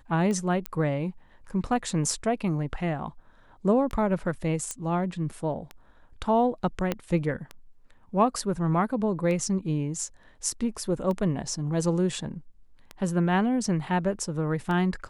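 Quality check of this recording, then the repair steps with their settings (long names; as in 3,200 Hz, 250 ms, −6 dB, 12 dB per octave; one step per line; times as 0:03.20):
scratch tick 33 1/3 rpm −21 dBFS
0:00.66: click −14 dBFS
0:04.71: click −17 dBFS
0:06.92: click −13 dBFS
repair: click removal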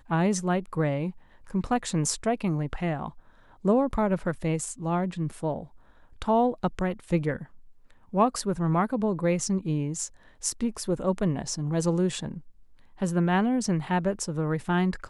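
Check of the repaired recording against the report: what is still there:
0:06.92: click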